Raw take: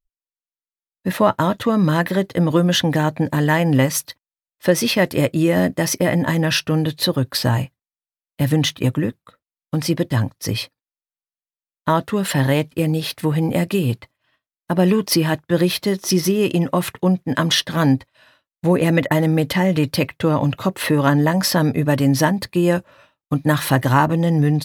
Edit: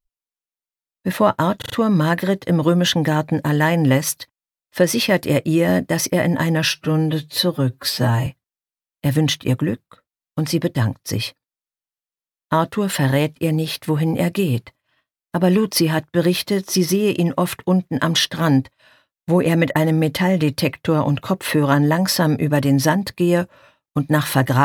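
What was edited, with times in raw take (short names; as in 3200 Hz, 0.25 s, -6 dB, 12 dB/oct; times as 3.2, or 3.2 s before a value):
1.58 stutter 0.04 s, 4 plays
6.57–7.62 stretch 1.5×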